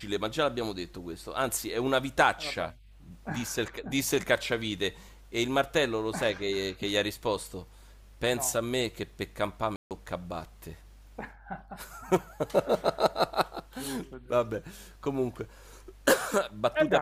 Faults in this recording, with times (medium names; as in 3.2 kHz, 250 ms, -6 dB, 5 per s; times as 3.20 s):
9.76–9.91 s: dropout 148 ms